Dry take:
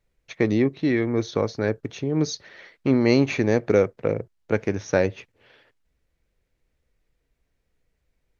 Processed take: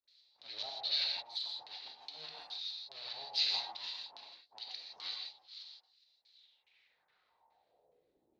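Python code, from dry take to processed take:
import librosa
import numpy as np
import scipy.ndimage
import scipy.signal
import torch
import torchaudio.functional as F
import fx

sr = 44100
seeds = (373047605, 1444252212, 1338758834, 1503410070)

y = fx.spec_quant(x, sr, step_db=15)
y = fx.high_shelf(y, sr, hz=3800.0, db=10.5)
y = fx.hum_notches(y, sr, base_hz=60, count=6)
y = fx.auto_swell(y, sr, attack_ms=288.0)
y = fx.dispersion(y, sr, late='highs', ms=81.0, hz=710.0)
y = np.abs(y)
y = fx.filter_lfo_lowpass(y, sr, shape='square', hz=2.4, low_hz=830.0, high_hz=4000.0, q=5.0)
y = fx.rev_gated(y, sr, seeds[0], gate_ms=190, shape='flat', drr_db=0.0)
y = fx.filter_sweep_bandpass(y, sr, from_hz=4500.0, to_hz=290.0, start_s=6.3, end_s=8.31, q=3.6)
y = fx.band_squash(y, sr, depth_pct=40)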